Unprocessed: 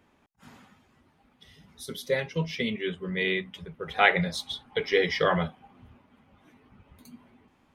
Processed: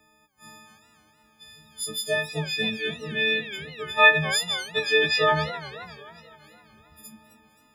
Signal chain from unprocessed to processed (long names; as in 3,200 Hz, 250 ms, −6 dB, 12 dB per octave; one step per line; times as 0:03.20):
every partial snapped to a pitch grid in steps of 6 semitones
feedback echo with a swinging delay time 259 ms, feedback 53%, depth 219 cents, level −14.5 dB
level −1.5 dB